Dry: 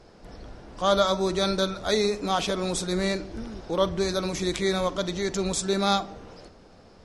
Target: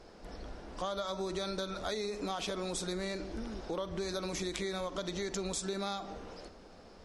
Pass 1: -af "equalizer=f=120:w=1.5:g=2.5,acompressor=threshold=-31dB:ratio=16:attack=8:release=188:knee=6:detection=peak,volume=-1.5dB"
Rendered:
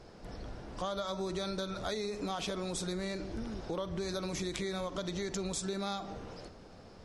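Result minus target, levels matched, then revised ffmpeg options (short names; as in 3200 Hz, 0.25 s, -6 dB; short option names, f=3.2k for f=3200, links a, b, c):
125 Hz band +3.0 dB
-af "equalizer=f=120:w=1.5:g=-7.5,acompressor=threshold=-31dB:ratio=16:attack=8:release=188:knee=6:detection=peak,volume=-1.5dB"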